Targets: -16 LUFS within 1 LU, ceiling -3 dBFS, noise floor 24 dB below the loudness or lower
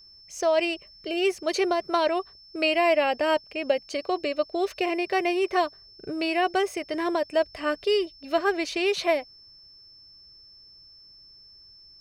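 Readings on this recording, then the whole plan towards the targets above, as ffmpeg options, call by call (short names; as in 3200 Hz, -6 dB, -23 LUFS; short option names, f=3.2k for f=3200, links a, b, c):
steady tone 5300 Hz; tone level -49 dBFS; loudness -26.0 LUFS; peak -10.5 dBFS; loudness target -16.0 LUFS
-> -af "bandreject=f=5.3k:w=30"
-af "volume=10dB,alimiter=limit=-3dB:level=0:latency=1"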